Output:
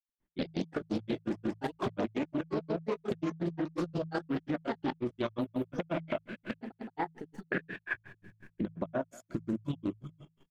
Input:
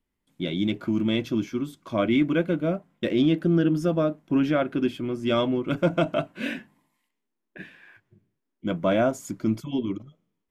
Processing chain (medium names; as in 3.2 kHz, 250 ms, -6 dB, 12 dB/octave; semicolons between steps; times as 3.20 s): recorder AGC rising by 35 dB/s; treble shelf 2.8 kHz -9 dB; doubling 49 ms -7 dB; ever faster or slower copies 172 ms, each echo +5 st, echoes 3, each echo -6 dB; peaking EQ 1.7 kHz +5 dB 0.21 oct; thinning echo 210 ms, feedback 60%, high-pass 840 Hz, level -18 dB; granulator 116 ms, grains 5.6 per s, pitch spread up and down by 0 st; peak limiter -18.5 dBFS, peak gain reduction 8 dB; level held to a coarse grid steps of 10 dB; de-hum 53.94 Hz, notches 3; loudspeaker Doppler distortion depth 0.3 ms